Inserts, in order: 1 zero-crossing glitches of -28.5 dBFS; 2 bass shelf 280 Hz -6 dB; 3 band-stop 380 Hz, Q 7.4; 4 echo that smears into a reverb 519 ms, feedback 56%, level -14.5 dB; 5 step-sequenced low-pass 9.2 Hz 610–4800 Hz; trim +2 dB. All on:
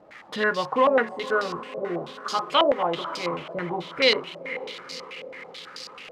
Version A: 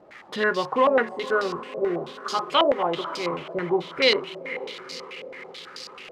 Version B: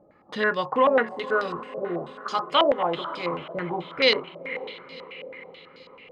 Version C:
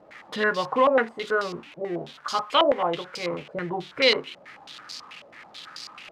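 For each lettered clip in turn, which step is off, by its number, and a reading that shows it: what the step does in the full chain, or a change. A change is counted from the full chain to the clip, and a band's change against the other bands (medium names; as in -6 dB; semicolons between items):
3, 250 Hz band +1.5 dB; 1, distortion -13 dB; 4, momentary loudness spread change +4 LU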